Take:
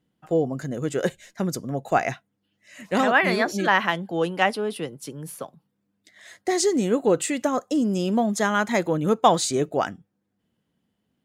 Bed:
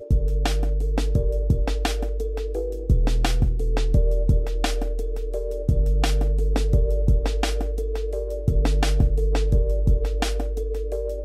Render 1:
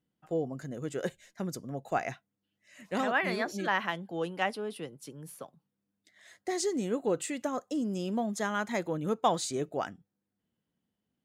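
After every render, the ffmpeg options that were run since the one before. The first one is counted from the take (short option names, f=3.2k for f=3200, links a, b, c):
-af "volume=-9.5dB"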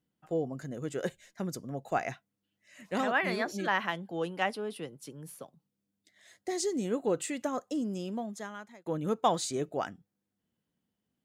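-filter_complex "[0:a]asettb=1/sr,asplit=3[a][b][c];[a]atrim=end=5.384[d];[b]atrim=start=5.38:end=6.85,asetpts=PTS-STARTPTS,afade=t=in:d=0.004:c=qsin,afade=t=out:st=1.466:d=0.004:c=qsin,equalizer=f=1.3k:w=0.75:g=-5[e];[c]atrim=start=6.846[f];[d][e]acrossfade=d=0.004:c1=hsin:c2=qsin[g];[g][f]acrossfade=d=0.004:c1=qsin:c2=hsin,asplit=2[h][i];[h]atrim=end=8.86,asetpts=PTS-STARTPTS,afade=t=out:st=7.69:d=1.17[j];[i]atrim=start=8.86,asetpts=PTS-STARTPTS,afade=t=in:d=0.004:c=hsin[k];[j][k]concat=n=2:v=0:a=1"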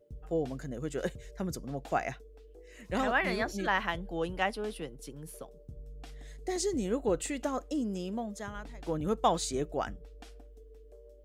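-filter_complex "[1:a]volume=-26.5dB[a];[0:a][a]amix=inputs=2:normalize=0"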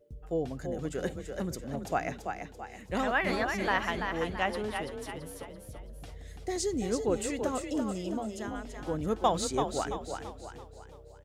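-filter_complex "[0:a]asplit=6[a][b][c][d][e][f];[b]adelay=335,afreqshift=32,volume=-6dB[g];[c]adelay=670,afreqshift=64,volume=-13.3dB[h];[d]adelay=1005,afreqshift=96,volume=-20.7dB[i];[e]adelay=1340,afreqshift=128,volume=-28dB[j];[f]adelay=1675,afreqshift=160,volume=-35.3dB[k];[a][g][h][i][j][k]amix=inputs=6:normalize=0"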